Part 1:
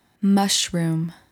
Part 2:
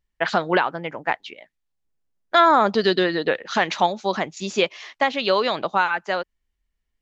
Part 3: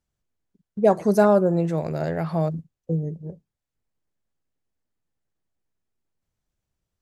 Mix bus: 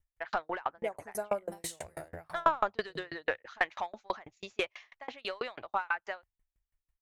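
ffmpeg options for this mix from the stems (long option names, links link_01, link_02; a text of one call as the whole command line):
ffmpeg -i stem1.wav -i stem2.wav -i stem3.wav -filter_complex "[0:a]adelay=1150,volume=-2.5dB[link_01];[1:a]lowpass=5100,acontrast=44,volume=-1.5dB[link_02];[2:a]volume=1.5dB,asplit=2[link_03][link_04];[link_04]apad=whole_len=108825[link_05];[link_01][link_05]sidechaincompress=threshold=-21dB:ratio=8:attack=5:release=111[link_06];[link_06][link_02][link_03]amix=inputs=3:normalize=0,firequalizer=gain_entry='entry(100,0);entry(160,-24);entry(240,-17);entry(680,-7);entry(2100,-5);entry(3200,-11);entry(4700,-12);entry(9100,0)':delay=0.05:min_phase=1,aeval=exprs='val(0)*pow(10,-35*if(lt(mod(6.1*n/s,1),2*abs(6.1)/1000),1-mod(6.1*n/s,1)/(2*abs(6.1)/1000),(mod(6.1*n/s,1)-2*abs(6.1)/1000)/(1-2*abs(6.1)/1000))/20)':channel_layout=same" out.wav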